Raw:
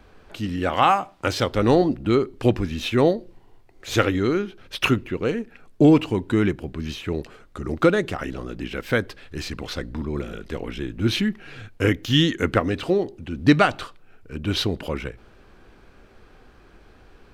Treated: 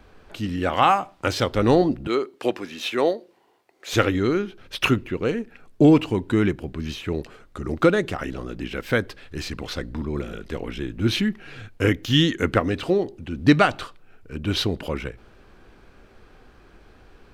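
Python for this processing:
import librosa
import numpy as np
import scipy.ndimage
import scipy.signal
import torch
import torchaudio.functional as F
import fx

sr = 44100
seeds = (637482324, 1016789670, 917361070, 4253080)

y = fx.highpass(x, sr, hz=400.0, slope=12, at=(2.07, 3.93))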